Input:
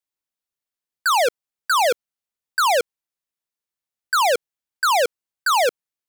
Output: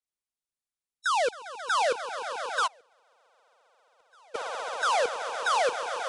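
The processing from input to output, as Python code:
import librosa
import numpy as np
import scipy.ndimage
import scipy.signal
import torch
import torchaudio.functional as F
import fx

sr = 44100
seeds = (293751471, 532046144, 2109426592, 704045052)

p1 = fx.freq_compress(x, sr, knee_hz=2600.0, ratio=1.5)
p2 = p1 + fx.echo_swell(p1, sr, ms=134, loudest=8, wet_db=-14, dry=0)
p3 = fx.gate_flip(p2, sr, shuts_db=-18.0, range_db=-32, at=(2.66, 4.34), fade=0.02)
p4 = fx.low_shelf(p3, sr, hz=74.0, db=8.5)
y = p4 * 10.0 ** (-7.5 / 20.0)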